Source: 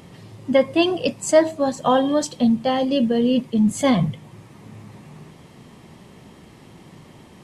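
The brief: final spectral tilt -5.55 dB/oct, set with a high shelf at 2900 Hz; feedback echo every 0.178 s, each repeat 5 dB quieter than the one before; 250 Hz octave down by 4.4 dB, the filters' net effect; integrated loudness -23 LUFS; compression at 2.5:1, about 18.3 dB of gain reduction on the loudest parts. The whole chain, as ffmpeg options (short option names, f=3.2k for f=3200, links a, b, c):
-af "equalizer=f=250:t=o:g=-5,highshelf=f=2.9k:g=-7,acompressor=threshold=-41dB:ratio=2.5,aecho=1:1:178|356|534|712|890|1068|1246:0.562|0.315|0.176|0.0988|0.0553|0.031|0.0173,volume=15dB"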